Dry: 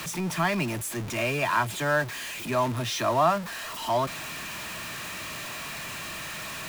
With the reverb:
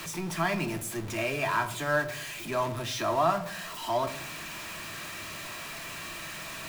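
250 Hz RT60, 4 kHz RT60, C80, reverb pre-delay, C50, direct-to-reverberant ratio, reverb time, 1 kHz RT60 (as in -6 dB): 0.80 s, 0.40 s, 17.0 dB, 3 ms, 13.5 dB, 6.0 dB, 0.60 s, 0.55 s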